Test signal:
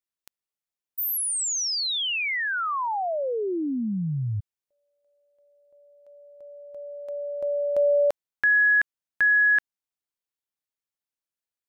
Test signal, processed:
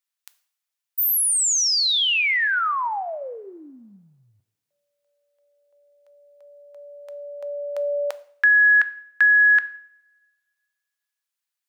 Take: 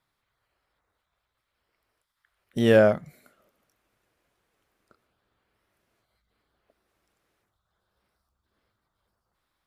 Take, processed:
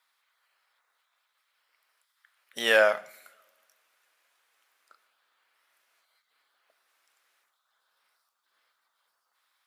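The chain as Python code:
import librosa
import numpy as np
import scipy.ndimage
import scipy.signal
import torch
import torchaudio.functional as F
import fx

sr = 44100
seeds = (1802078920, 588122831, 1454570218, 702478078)

y = scipy.signal.sosfilt(scipy.signal.butter(2, 1100.0, 'highpass', fs=sr, output='sos'), x)
y = fx.rev_double_slope(y, sr, seeds[0], early_s=0.53, late_s=1.9, knee_db=-25, drr_db=13.0)
y = y * 10.0 ** (6.5 / 20.0)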